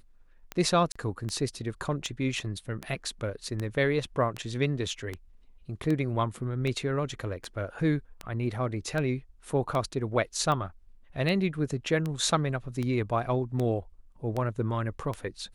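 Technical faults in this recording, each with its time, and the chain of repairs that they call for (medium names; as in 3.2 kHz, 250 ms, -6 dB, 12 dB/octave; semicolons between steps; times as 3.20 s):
tick 78 rpm -19 dBFS
0.92–0.95 s: dropout 35 ms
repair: de-click; interpolate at 0.92 s, 35 ms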